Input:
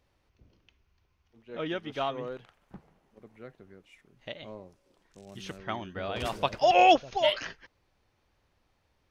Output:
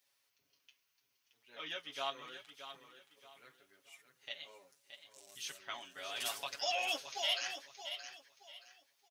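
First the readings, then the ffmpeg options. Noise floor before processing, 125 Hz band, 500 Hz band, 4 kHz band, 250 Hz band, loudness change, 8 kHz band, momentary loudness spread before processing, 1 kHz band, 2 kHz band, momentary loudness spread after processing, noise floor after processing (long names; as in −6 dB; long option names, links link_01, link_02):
−73 dBFS, −26.5 dB, −17.5 dB, −3.0 dB, −23.5 dB, −12.5 dB, can't be measured, 23 LU, −17.0 dB, −7.0 dB, 22 LU, −80 dBFS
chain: -af "alimiter=limit=-18.5dB:level=0:latency=1:release=44,aderivative,aecho=1:1:7.2:0.83,aecho=1:1:623|1246|1869:0.335|0.0938|0.0263,flanger=delay=6.6:depth=8.3:regen=-45:speed=0.75:shape=sinusoidal,volume=8.5dB"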